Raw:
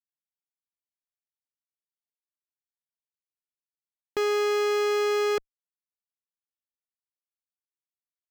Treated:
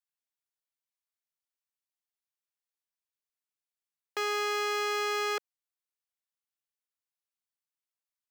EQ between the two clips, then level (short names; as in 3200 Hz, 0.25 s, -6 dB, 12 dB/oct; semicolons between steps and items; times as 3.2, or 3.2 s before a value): HPF 710 Hz 12 dB/oct; 0.0 dB